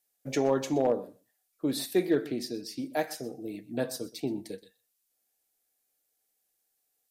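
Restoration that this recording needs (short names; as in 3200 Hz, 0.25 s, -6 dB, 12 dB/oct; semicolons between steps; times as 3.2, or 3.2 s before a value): clip repair -16.5 dBFS; expander -70 dBFS, range -21 dB; inverse comb 0.124 s -19.5 dB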